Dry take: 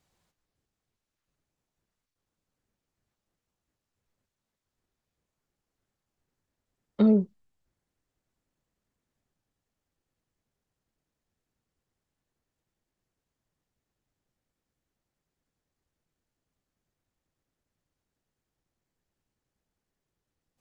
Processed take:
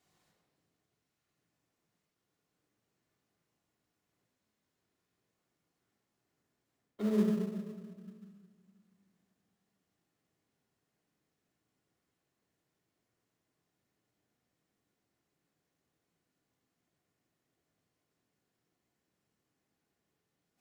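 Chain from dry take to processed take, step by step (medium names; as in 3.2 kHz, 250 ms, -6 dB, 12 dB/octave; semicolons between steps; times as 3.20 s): reverse; compression 10:1, threshold -29 dBFS, peak gain reduction 13 dB; reverse; high-pass 100 Hz 12 dB/octave; bass shelf 170 Hz -9 dB; hum notches 50/100/150 Hz; simulated room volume 2000 m³, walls mixed, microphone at 3.3 m; in parallel at -11.5 dB: sample-rate reducer 1.5 kHz, jitter 20%; on the sum: trim -2.5 dB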